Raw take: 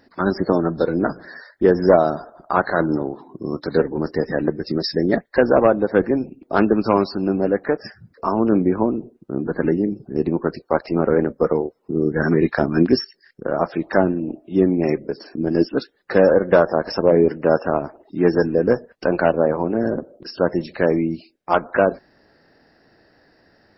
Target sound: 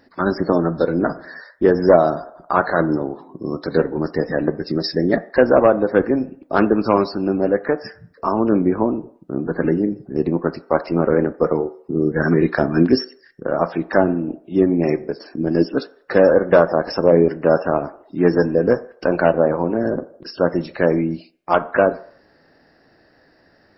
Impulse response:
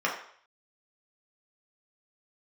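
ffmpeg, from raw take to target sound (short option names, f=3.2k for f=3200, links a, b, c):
-filter_complex "[0:a]asplit=2[a][b];[b]equalizer=f=1.9k:w=0.32:g=-4.5[c];[1:a]atrim=start_sample=2205,lowpass=4.5k[d];[c][d]afir=irnorm=-1:irlink=0,volume=-18dB[e];[a][e]amix=inputs=2:normalize=0"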